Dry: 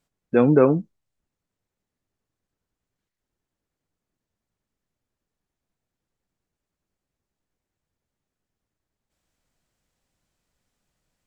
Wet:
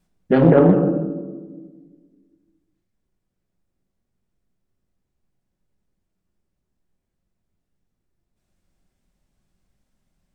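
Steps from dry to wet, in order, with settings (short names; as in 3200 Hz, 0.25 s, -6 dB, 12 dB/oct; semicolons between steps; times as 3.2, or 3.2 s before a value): low shelf 260 Hz +8.5 dB; in parallel at -1.5 dB: limiter -11 dBFS, peak gain reduction 9 dB; on the sum: vibrato 13 Hz 28 cents; vocal rider 2 s; on a send at -2 dB: reverb RT60 1.5 s, pre-delay 3 ms; on the sum: speed mistake 44.1 kHz file played as 48 kHz; Doppler distortion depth 0.4 ms; gain -5.5 dB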